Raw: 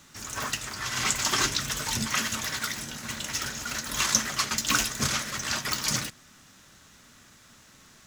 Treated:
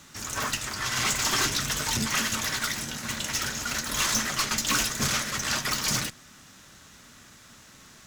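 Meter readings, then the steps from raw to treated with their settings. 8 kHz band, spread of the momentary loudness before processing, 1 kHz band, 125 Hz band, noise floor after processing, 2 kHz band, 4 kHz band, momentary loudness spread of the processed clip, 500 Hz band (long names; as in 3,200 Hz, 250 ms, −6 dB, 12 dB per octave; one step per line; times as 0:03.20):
+0.5 dB, 8 LU, +1.0 dB, +1.5 dB, −52 dBFS, +1.5 dB, +1.0 dB, 6 LU, +2.0 dB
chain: tube saturation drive 25 dB, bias 0.45
level +5 dB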